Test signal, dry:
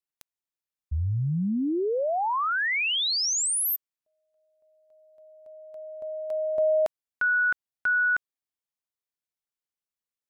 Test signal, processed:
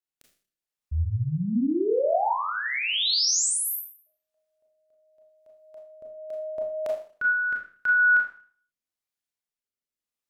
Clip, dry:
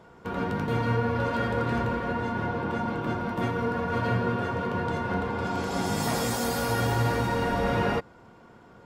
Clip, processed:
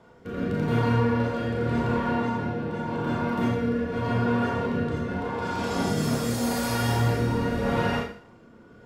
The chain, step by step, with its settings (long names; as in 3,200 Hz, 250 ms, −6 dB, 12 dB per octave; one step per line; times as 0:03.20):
rotating-speaker cabinet horn 0.85 Hz
four-comb reverb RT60 0.47 s, combs from 26 ms, DRR −0.5 dB